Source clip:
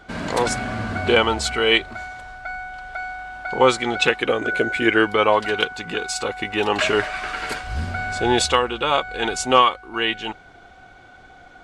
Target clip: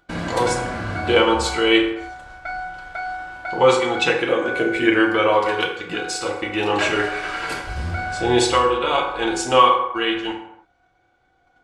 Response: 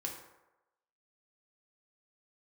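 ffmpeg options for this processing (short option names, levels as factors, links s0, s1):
-filter_complex "[0:a]acompressor=mode=upward:threshold=0.0794:ratio=2.5,agate=range=0.0355:threshold=0.0355:ratio=16:detection=peak[s0];[1:a]atrim=start_sample=2205,afade=t=out:st=0.38:d=0.01,atrim=end_sample=17199[s1];[s0][s1]afir=irnorm=-1:irlink=0"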